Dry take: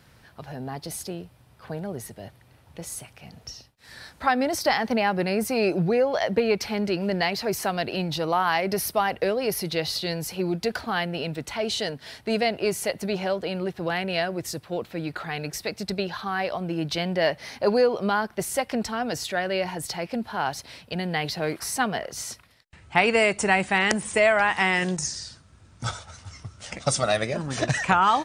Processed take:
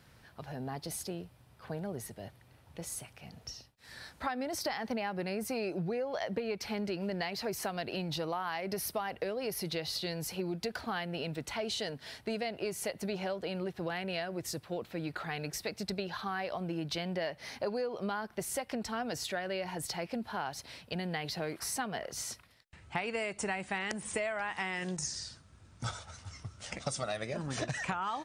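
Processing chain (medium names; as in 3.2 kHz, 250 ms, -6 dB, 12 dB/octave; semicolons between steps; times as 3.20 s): compression 6:1, threshold -27 dBFS, peak gain reduction 12.5 dB; trim -5 dB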